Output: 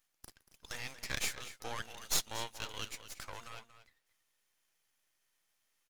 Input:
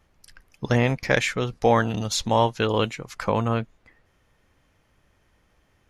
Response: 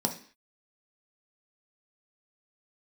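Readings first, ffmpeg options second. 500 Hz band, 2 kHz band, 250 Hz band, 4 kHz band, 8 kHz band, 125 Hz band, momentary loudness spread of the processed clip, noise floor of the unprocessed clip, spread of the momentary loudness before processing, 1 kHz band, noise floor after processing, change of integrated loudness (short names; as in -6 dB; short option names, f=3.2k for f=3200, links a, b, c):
-27.0 dB, -15.0 dB, -28.5 dB, -9.5 dB, -4.0 dB, -27.0 dB, 18 LU, -65 dBFS, 8 LU, -21.5 dB, -80 dBFS, -16.0 dB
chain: -filter_complex "[0:a]aderivative,asplit=2[a][b];[b]adelay=233.2,volume=-12dB,highshelf=f=4k:g=-5.25[c];[a][c]amix=inputs=2:normalize=0,aeval=exprs='max(val(0),0)':c=same,volume=1.5dB"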